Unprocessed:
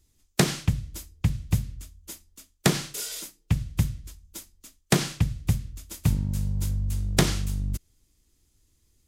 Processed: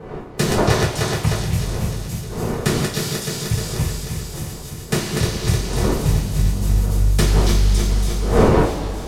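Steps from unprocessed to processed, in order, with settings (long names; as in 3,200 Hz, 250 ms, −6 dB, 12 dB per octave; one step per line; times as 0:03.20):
feedback delay that plays each chunk backwards 153 ms, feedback 82%, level −3.5 dB
wind on the microphone 510 Hz −27 dBFS
0:00.58–0:01.38: parametric band 860 Hz +11.5 dB 2.7 octaves
on a send: echo through a band-pass that steps 280 ms, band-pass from 4,500 Hz, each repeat 0.7 octaves, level −2 dB
on the sum: coupled-rooms reverb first 0.29 s, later 3 s, from −17 dB, DRR −7 dB
level −6.5 dB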